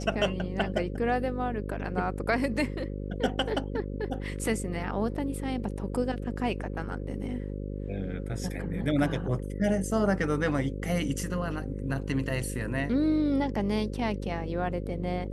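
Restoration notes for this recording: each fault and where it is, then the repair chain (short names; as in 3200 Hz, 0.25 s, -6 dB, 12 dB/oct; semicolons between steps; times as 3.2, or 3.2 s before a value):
buzz 50 Hz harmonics 11 -35 dBFS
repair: de-hum 50 Hz, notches 11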